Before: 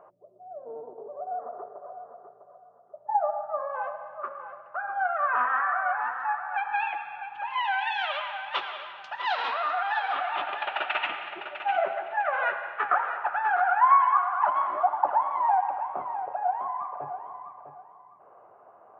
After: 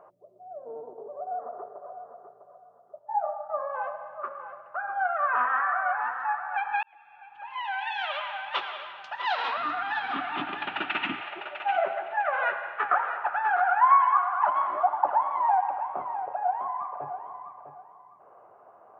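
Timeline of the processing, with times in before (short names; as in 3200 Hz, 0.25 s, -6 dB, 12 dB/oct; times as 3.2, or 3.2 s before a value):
2.99–3.5 detuned doubles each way 27 cents
6.83–8.33 fade in
9.57–11.21 resonant low shelf 380 Hz +13.5 dB, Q 3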